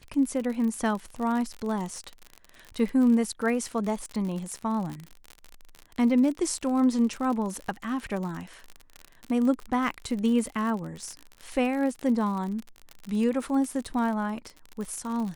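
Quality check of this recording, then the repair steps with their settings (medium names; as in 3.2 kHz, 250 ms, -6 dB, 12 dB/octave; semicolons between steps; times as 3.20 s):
crackle 51 per s -31 dBFS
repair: de-click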